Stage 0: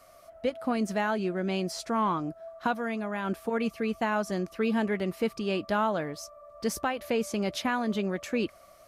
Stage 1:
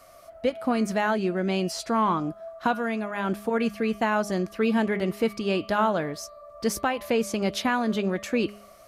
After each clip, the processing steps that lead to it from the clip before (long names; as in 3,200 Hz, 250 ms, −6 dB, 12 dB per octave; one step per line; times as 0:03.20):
hum removal 205.5 Hz, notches 23
level +4 dB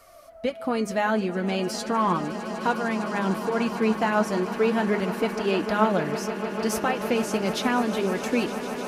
flanger 0.37 Hz, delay 2.1 ms, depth 8.1 ms, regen +46%
echo that builds up and dies away 152 ms, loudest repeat 8, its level −16.5 dB
level +4 dB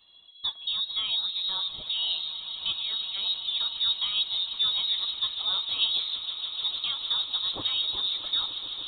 voice inversion scrambler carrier 4,000 Hz
flat-topped bell 2,000 Hz −12.5 dB 1.1 octaves
level −4 dB